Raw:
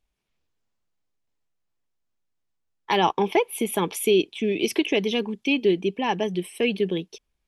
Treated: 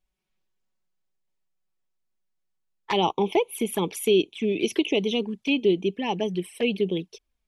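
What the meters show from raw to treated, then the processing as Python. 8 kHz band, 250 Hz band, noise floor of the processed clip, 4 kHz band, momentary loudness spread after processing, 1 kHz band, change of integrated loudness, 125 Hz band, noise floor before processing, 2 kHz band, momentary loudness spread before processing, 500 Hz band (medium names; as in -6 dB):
-3.0 dB, -0.5 dB, -78 dBFS, -1.0 dB, 6 LU, -3.5 dB, -1.0 dB, 0.0 dB, -77 dBFS, -3.5 dB, 5 LU, -1.0 dB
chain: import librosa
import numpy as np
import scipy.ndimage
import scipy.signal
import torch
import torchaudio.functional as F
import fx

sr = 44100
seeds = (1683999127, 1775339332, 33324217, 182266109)

y = fx.env_flanger(x, sr, rest_ms=5.4, full_db=-20.5)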